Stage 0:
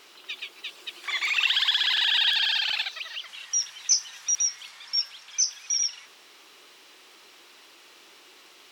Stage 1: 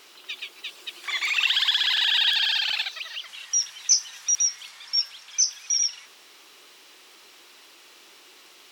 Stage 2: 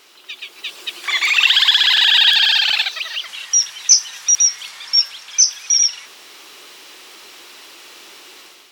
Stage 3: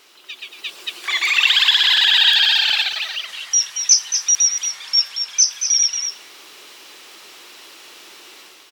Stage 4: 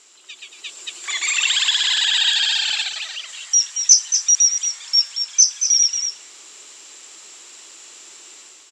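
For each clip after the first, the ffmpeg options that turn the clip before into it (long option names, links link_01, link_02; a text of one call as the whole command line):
ffmpeg -i in.wav -af "highshelf=frequency=5400:gain=4.5" out.wav
ffmpeg -i in.wav -af "dynaudnorm=framelen=400:gausssize=3:maxgain=9dB,volume=1.5dB" out.wav
ffmpeg -i in.wav -af "aecho=1:1:229:0.398,volume=-2dB" out.wav
ffmpeg -i in.wav -af "lowpass=frequency=7400:width_type=q:width=11,volume=-6dB" out.wav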